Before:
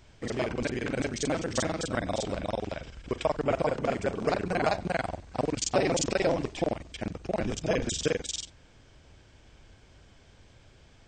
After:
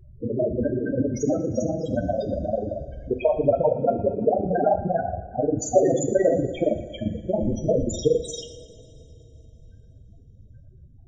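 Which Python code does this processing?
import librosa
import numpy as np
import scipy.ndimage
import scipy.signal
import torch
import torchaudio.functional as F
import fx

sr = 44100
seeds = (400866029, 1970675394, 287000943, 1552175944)

p1 = fx.mod_noise(x, sr, seeds[0], snr_db=29)
p2 = fx.spec_topn(p1, sr, count=8)
p3 = p2 + fx.echo_feedback(p2, sr, ms=116, feedback_pct=59, wet_db=-16.0, dry=0)
p4 = fx.rev_double_slope(p3, sr, seeds[1], early_s=0.54, late_s=3.6, knee_db=-19, drr_db=6.5)
y = p4 * 10.0 ** (8.0 / 20.0)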